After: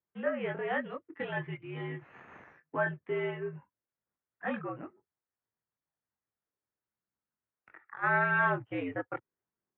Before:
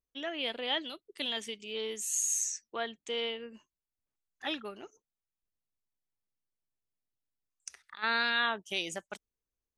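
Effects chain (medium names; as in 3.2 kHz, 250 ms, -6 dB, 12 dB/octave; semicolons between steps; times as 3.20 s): 1.00–2.91 s: comb 5.5 ms, depth 73%; chorus voices 4, 0.4 Hz, delay 22 ms, depth 1.1 ms; short-mantissa float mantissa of 2-bit; mistuned SSB -68 Hz 160–2000 Hz; trim +8 dB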